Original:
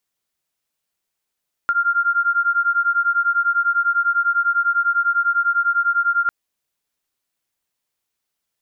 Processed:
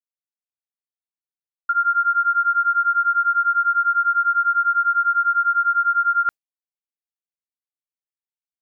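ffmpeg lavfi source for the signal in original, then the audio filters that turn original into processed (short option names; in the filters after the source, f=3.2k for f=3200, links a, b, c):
-f lavfi -i "aevalsrc='0.119*(sin(2*PI*1390*t)+sin(2*PI*1400*t))':d=4.6:s=44100"
-af "agate=range=-33dB:threshold=-19dB:ratio=3:detection=peak"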